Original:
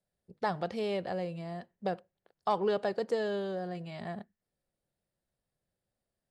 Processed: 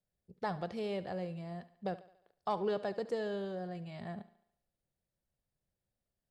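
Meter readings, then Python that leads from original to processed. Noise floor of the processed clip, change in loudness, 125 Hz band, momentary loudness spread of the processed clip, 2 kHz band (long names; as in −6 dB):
below −85 dBFS, −4.5 dB, −2.0 dB, 11 LU, −5.5 dB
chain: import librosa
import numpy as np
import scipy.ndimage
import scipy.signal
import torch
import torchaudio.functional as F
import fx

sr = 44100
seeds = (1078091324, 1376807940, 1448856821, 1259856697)

p1 = fx.low_shelf(x, sr, hz=150.0, db=8.0)
p2 = p1 + fx.echo_thinned(p1, sr, ms=71, feedback_pct=54, hz=200.0, wet_db=-16.5, dry=0)
y = F.gain(torch.from_numpy(p2), -5.5).numpy()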